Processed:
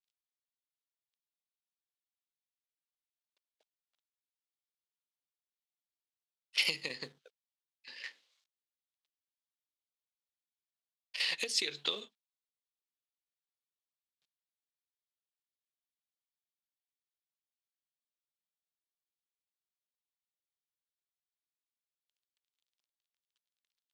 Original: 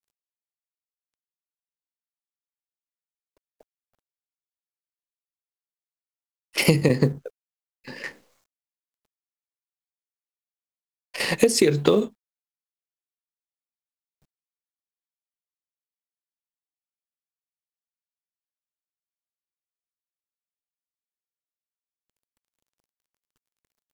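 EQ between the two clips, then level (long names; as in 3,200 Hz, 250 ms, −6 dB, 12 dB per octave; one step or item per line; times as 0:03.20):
resonant band-pass 3,600 Hz, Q 2.3
0.0 dB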